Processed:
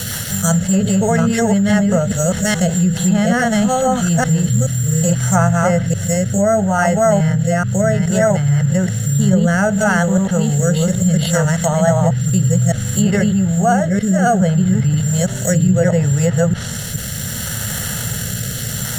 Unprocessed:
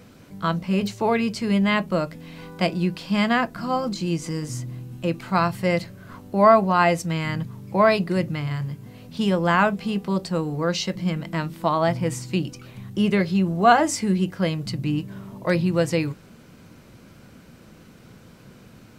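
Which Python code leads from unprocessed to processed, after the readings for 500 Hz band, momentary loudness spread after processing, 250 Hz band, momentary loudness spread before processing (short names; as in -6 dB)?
+6.5 dB, 7 LU, +9.0 dB, 12 LU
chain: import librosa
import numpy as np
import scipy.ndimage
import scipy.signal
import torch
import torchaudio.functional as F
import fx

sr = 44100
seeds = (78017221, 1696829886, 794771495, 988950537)

y = fx.reverse_delay(x, sr, ms=424, wet_db=-0.5)
y = fx.dmg_noise_band(y, sr, seeds[0], low_hz=960.0, high_hz=3400.0, level_db=-46.0)
y = fx.fixed_phaser(y, sr, hz=1600.0, stages=8)
y = (np.kron(scipy.signal.resample_poly(y, 1, 6), np.eye(6)[0]) * 6)[:len(y)]
y = fx.rotary_switch(y, sr, hz=5.0, then_hz=0.65, switch_at_s=2.53)
y = fx.env_lowpass_down(y, sr, base_hz=2400.0, full_db=-14.5)
y = fx.dynamic_eq(y, sr, hz=4900.0, q=1.5, threshold_db=-48.0, ratio=4.0, max_db=-5)
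y = fx.rider(y, sr, range_db=4, speed_s=2.0)
y = fx.peak_eq(y, sr, hz=110.0, db=8.5, octaves=1.7)
y = fx.env_flatten(y, sr, amount_pct=50)
y = y * 10.0 ** (4.5 / 20.0)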